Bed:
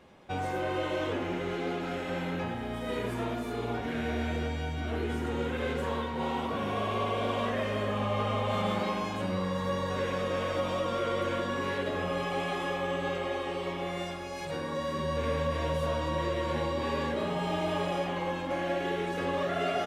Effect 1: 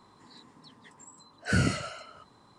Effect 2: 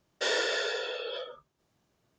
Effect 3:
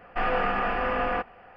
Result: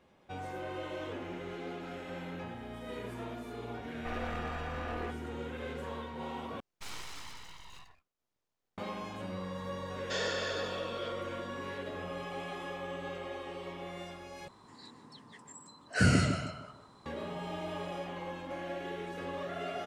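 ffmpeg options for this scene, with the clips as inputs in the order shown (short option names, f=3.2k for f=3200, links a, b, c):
-filter_complex "[2:a]asplit=2[a][b];[0:a]volume=-8.5dB[c];[3:a]aeval=exprs='clip(val(0),-1,0.0501)':c=same[d];[a]aeval=exprs='abs(val(0))':c=same[e];[1:a]asplit=2[f][g];[g]adelay=153,lowpass=f=950:p=1,volume=-5dB,asplit=2[h][i];[i]adelay=153,lowpass=f=950:p=1,volume=0.33,asplit=2[j][k];[k]adelay=153,lowpass=f=950:p=1,volume=0.33,asplit=2[l][m];[m]adelay=153,lowpass=f=950:p=1,volume=0.33[n];[f][h][j][l][n]amix=inputs=5:normalize=0[o];[c]asplit=3[p][q][r];[p]atrim=end=6.604[s];[e]atrim=end=2.18,asetpts=PTS-STARTPTS,volume=-12.5dB[t];[q]atrim=start=8.776:end=14.484[u];[o]atrim=end=2.58[v];[r]atrim=start=17.056[w];[d]atrim=end=1.56,asetpts=PTS-STARTPTS,volume=-13dB,afade=t=in:d=0.004:c=hsin,afade=t=out:st=1.556:d=0.004:c=hsin,adelay=171549S[x];[b]atrim=end=2.18,asetpts=PTS-STARTPTS,volume=-6.5dB,afade=t=in:d=0.004:c=hsin,afade=t=out:st=2.176:d=0.004:c=hsin,adelay=9890[y];[s][t]acrossfade=d=0.004:c1=hsin:c2=hsin[z];[z][u]acrossfade=d=0.004:c1=hsin:c2=hsin[aa];[aa][v]acrossfade=d=0.004:c1=hsin:c2=hsin[ab];[ab][w]acrossfade=d=0.004:c1=hsin:c2=hsin[ac];[ac][x][y]amix=inputs=3:normalize=0"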